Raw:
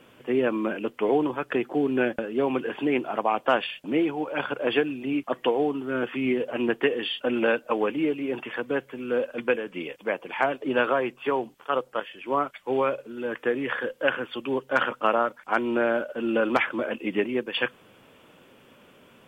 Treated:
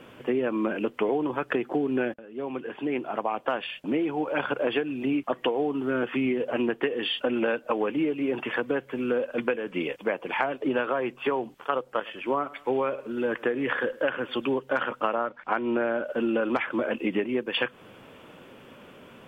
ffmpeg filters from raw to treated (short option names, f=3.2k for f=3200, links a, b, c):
-filter_complex "[0:a]asettb=1/sr,asplit=3[a][b][c];[a]atrim=end=11.834[d];[b]atrim=start=11.83:end=14.46,asetpts=PTS-STARTPTS,afade=t=in:d=0.004:c=qsin,afade=t=out:st=2.626:d=0.004:c=qsin,aecho=1:1:102|204:0.0668|0.0194,atrim=end_sample=115983[e];[c]atrim=start=14.456[f];[d][e]acrossfade=d=0.004:c1=hsin:c2=qsin[g];[g][f]acrossfade=d=0.004:c1=qsin:c2=hsin,asettb=1/sr,asplit=3[h][i][j];[h]atrim=end=15.164[k];[i]atrim=start=15.16:end=16.04,asetpts=PTS-STARTPTS,afade=t=in:d=0.004:c=qsin,afade=t=out:st=0.876:d=0.004:c=qsin,lowpass=3.8k[l];[j]atrim=start=16.036[m];[k][l]acrossfade=d=0.004:c1=hsin:c2=qsin[n];[n][m]acrossfade=d=0.004:c1=qsin:c2=hsin,asplit=2[o][p];[o]atrim=end=2.14,asetpts=PTS-STARTPTS,afade=t=out:st=2.136:d=0.004:c=hsin:silence=0.0794328[q];[p]atrim=start=2.14,asetpts=PTS-STARTPTS,afade=t=in:d=2.5:silence=0.0794328[r];[q][r]concat=n=2:v=0:a=1,highshelf=f=3.9k:g=-7,acompressor=threshold=-29dB:ratio=6,volume=6dB"